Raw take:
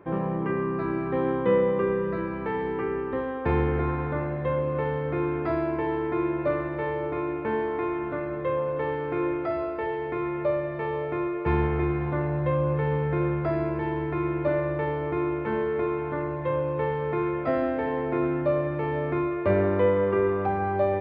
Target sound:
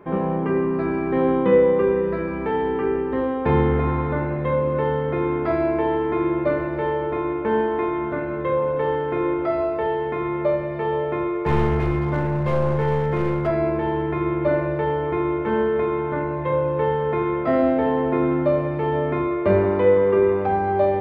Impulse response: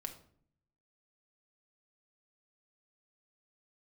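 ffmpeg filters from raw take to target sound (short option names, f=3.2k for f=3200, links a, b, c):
-filter_complex "[0:a]asplit=3[a][b][c];[a]afade=t=out:st=11.32:d=0.02[d];[b]aeval=exprs='clip(val(0),-1,0.0668)':c=same,afade=t=in:st=11.32:d=0.02,afade=t=out:st=13.46:d=0.02[e];[c]afade=t=in:st=13.46:d=0.02[f];[d][e][f]amix=inputs=3:normalize=0[g];[1:a]atrim=start_sample=2205,afade=t=out:st=0.24:d=0.01,atrim=end_sample=11025[h];[g][h]afir=irnorm=-1:irlink=0,volume=7.5dB"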